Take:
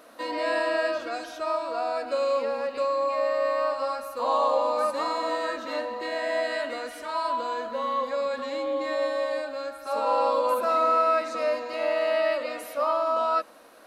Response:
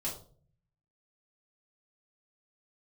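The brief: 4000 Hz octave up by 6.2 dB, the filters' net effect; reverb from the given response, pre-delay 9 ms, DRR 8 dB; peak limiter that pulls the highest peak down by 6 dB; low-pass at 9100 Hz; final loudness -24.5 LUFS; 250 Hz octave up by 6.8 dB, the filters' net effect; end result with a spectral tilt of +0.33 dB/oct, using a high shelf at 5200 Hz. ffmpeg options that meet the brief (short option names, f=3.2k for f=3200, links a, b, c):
-filter_complex "[0:a]lowpass=9.1k,equalizer=f=250:t=o:g=8.5,equalizer=f=4k:t=o:g=8.5,highshelf=f=5.2k:g=-3.5,alimiter=limit=-17.5dB:level=0:latency=1,asplit=2[a][b];[1:a]atrim=start_sample=2205,adelay=9[c];[b][c]afir=irnorm=-1:irlink=0,volume=-10dB[d];[a][d]amix=inputs=2:normalize=0,volume=1dB"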